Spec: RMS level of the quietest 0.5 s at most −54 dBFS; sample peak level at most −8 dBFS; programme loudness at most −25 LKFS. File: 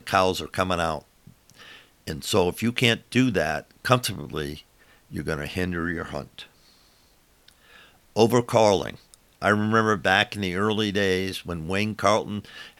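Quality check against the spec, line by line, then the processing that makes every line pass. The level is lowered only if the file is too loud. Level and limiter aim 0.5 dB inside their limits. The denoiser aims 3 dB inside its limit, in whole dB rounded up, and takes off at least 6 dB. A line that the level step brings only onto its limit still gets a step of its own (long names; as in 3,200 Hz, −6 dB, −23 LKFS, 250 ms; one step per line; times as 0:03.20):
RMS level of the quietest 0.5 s −60 dBFS: in spec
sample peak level −4.5 dBFS: out of spec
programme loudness −24.0 LKFS: out of spec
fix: level −1.5 dB
brickwall limiter −8.5 dBFS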